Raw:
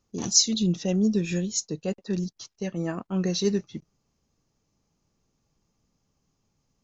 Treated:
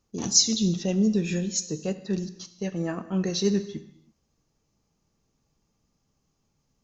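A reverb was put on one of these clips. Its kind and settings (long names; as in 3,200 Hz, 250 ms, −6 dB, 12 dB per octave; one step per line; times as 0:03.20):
reverb whose tail is shaped and stops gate 360 ms falling, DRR 10.5 dB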